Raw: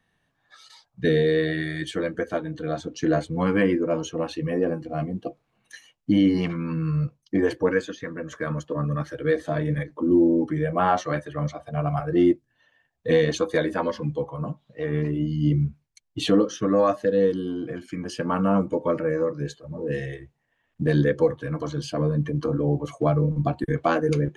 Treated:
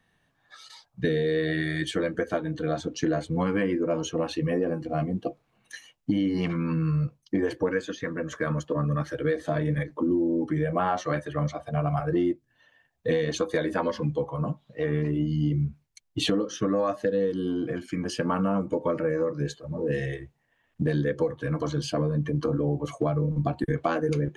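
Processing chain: compressor, threshold -24 dBFS, peak gain reduction 10 dB; gain +2 dB

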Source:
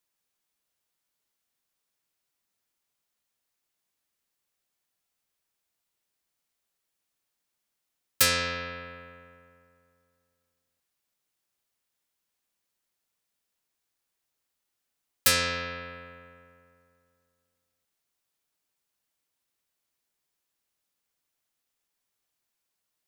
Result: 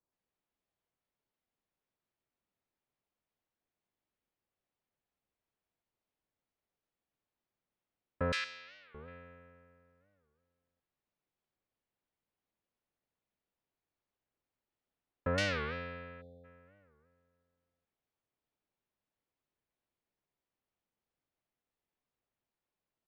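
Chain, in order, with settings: 8.32–8.96 differentiator; bands offset in time lows, highs 0.12 s, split 1400 Hz; 16.21–16.45 spectral delete 810–3300 Hz; tape spacing loss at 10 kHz 38 dB; record warp 45 rpm, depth 250 cents; gain +1.5 dB

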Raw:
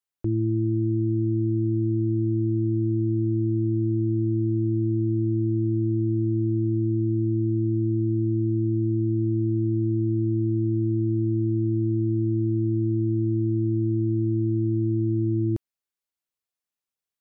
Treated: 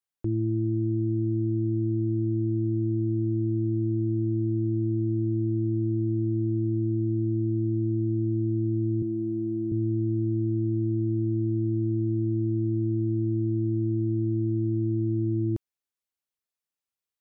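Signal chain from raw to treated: tracing distortion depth 0.028 ms; 9.02–9.72 HPF 180 Hz 12 dB/oct; gain -2.5 dB

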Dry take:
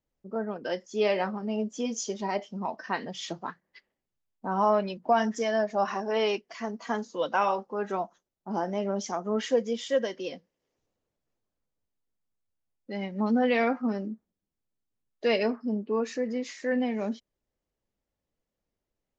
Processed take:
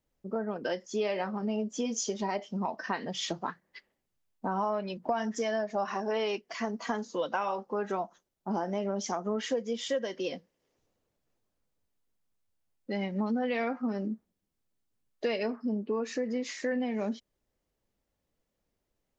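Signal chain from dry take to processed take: compressor 4:1, threshold -33 dBFS, peak gain reduction 13 dB; gain +4 dB

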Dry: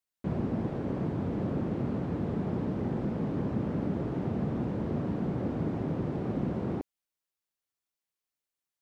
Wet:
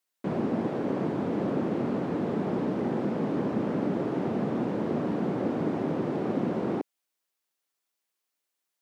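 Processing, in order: HPF 240 Hz 12 dB/oct; gain +6.5 dB

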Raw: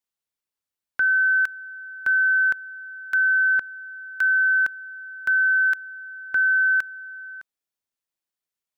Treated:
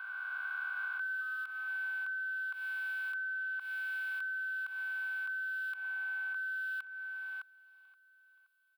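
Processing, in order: spectral swells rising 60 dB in 2.76 s; HPF 820 Hz 24 dB/oct; comb 2.7 ms, depth 65%; limiter -16.5 dBFS, peak gain reduction 7 dB; compressor 6:1, threshold -30 dBFS, peak gain reduction 10.5 dB; 1.21–1.68 AM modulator 240 Hz, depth 25%; fixed phaser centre 1800 Hz, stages 6; feedback echo 0.524 s, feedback 41%, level -17.5 dB

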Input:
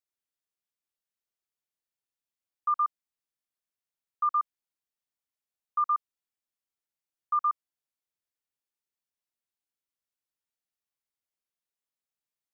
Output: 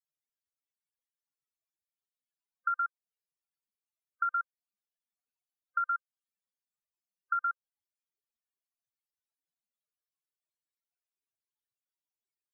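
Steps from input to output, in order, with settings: band inversion scrambler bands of 500 Hz; compressor, threshold -36 dBFS, peak gain reduction 12 dB; loudest bins only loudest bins 16; gain +6.5 dB

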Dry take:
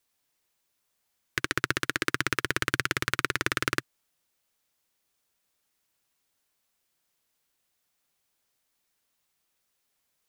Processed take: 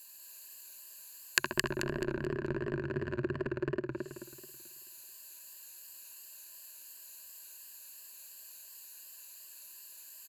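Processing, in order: RIAA curve recording; treble ducked by the level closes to 320 Hz, closed at -25.5 dBFS; ripple EQ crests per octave 1.4, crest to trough 16 dB; compressor 2:1, threshold -47 dBFS, peak gain reduction 16.5 dB; on a send: echo 80 ms -22 dB; on the sum: warbling echo 0.217 s, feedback 39%, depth 103 cents, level -3 dB; gain +10.5 dB

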